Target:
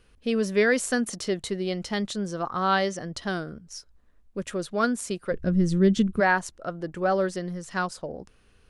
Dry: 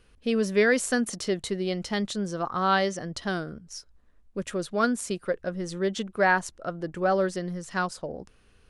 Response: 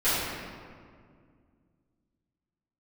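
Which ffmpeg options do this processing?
-filter_complex "[0:a]asplit=3[link_01][link_02][link_03];[link_01]afade=type=out:start_time=5.31:duration=0.02[link_04];[link_02]asubboost=boost=7.5:cutoff=250,afade=type=in:start_time=5.31:duration=0.02,afade=type=out:start_time=6.19:duration=0.02[link_05];[link_03]afade=type=in:start_time=6.19:duration=0.02[link_06];[link_04][link_05][link_06]amix=inputs=3:normalize=0"

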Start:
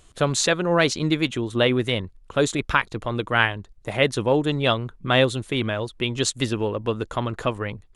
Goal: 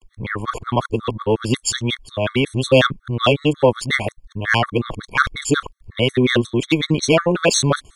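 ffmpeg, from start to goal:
ffmpeg -i in.wav -af "areverse,acontrast=84,afftfilt=real='re*gt(sin(2*PI*5.5*pts/sr)*(1-2*mod(floor(b*sr/1024/1100),2)),0)':imag='im*gt(sin(2*PI*5.5*pts/sr)*(1-2*mod(floor(b*sr/1024/1100),2)),0)':win_size=1024:overlap=0.75,volume=1dB" out.wav

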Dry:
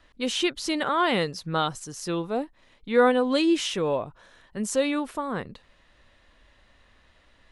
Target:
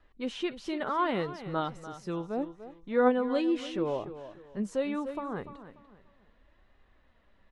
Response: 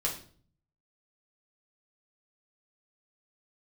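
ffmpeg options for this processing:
-filter_complex "[0:a]lowpass=frequency=1200:poles=1,asplit=2[link_01][link_02];[link_02]aecho=0:1:293|586|879:0.224|0.0694|0.0215[link_03];[link_01][link_03]amix=inputs=2:normalize=0,flanger=delay=2.4:depth=2.8:regen=65:speed=0.74:shape=sinusoidal"

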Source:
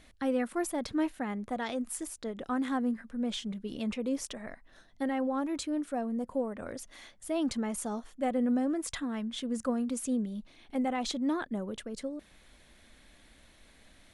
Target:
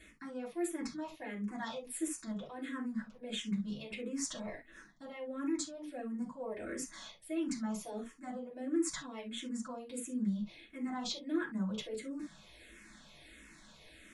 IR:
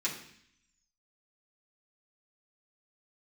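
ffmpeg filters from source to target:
-filter_complex "[0:a]areverse,acompressor=threshold=-39dB:ratio=6,areverse[link_01];[1:a]atrim=start_sample=2205,atrim=end_sample=3528[link_02];[link_01][link_02]afir=irnorm=-1:irlink=0,asplit=2[link_03][link_04];[link_04]afreqshift=-1.5[link_05];[link_03][link_05]amix=inputs=2:normalize=1,volume=1.5dB"

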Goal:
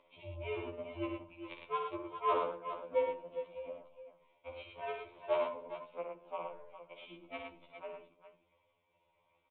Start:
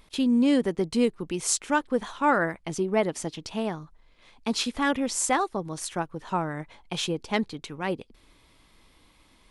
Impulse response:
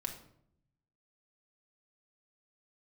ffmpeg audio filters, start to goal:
-filter_complex "[0:a]asubboost=boost=9.5:cutoff=63,acompressor=mode=upward:threshold=-28dB:ratio=2.5,aeval=exprs='0.501*(cos(1*acos(clip(val(0)/0.501,-1,1)))-cos(1*PI/2))+0.158*(cos(3*acos(clip(val(0)/0.501,-1,1)))-cos(3*PI/2))+0.00398*(cos(6*acos(clip(val(0)/0.501,-1,1)))-cos(6*PI/2))':channel_layout=same,asplit=3[link_01][link_02][link_03];[link_01]bandpass=frequency=730:width_type=q:width=8,volume=0dB[link_04];[link_02]bandpass=frequency=1090:width_type=q:width=8,volume=-6dB[link_05];[link_03]bandpass=frequency=2440:width_type=q:width=8,volume=-9dB[link_06];[link_04][link_05][link_06]amix=inputs=3:normalize=0,aeval=exprs='0.0158*(abs(mod(val(0)/0.0158+3,4)-2)-1)':channel_layout=same,afreqshift=-150,aecho=1:1:59|107|408|414:0.501|0.562|0.282|0.141,asplit=2[link_07][link_08];[1:a]atrim=start_sample=2205[link_09];[link_08][link_09]afir=irnorm=-1:irlink=0,volume=-3dB[link_10];[link_07][link_10]amix=inputs=2:normalize=0,aresample=8000,aresample=44100,afftfilt=real='re*2*eq(mod(b,4),0)':imag='im*2*eq(mod(b,4),0)':win_size=2048:overlap=0.75,volume=12.5dB"

